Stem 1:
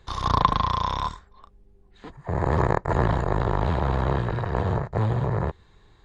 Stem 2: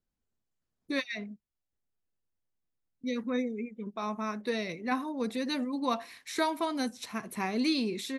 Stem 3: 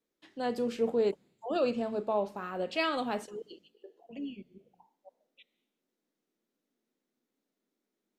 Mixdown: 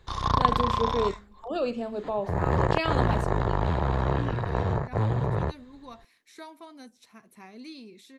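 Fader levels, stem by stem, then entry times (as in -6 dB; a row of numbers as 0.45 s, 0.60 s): -2.0 dB, -15.0 dB, +0.5 dB; 0.00 s, 0.00 s, 0.00 s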